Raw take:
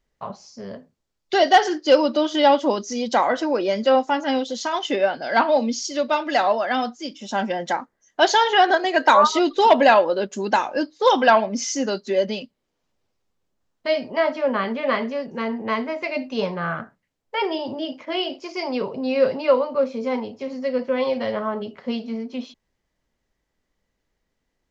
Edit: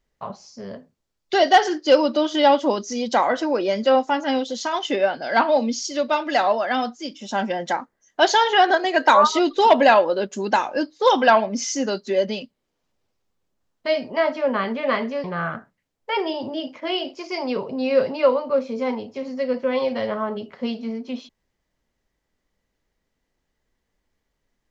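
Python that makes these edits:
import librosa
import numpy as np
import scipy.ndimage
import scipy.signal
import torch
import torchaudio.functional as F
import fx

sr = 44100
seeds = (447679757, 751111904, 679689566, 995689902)

y = fx.edit(x, sr, fx.cut(start_s=15.24, length_s=1.25), tone=tone)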